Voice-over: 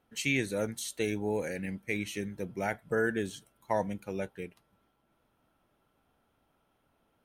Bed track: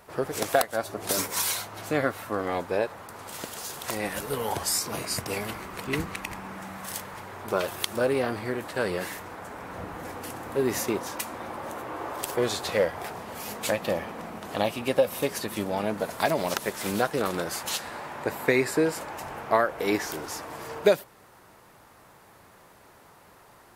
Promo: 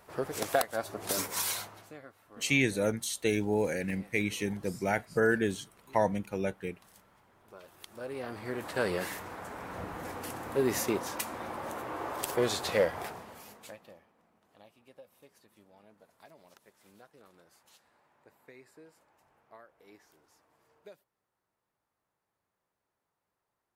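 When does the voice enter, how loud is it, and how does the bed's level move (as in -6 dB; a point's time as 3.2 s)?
2.25 s, +3.0 dB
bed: 1.64 s -5 dB
2 s -25 dB
7.61 s -25 dB
8.69 s -2.5 dB
13.01 s -2.5 dB
14.1 s -31.5 dB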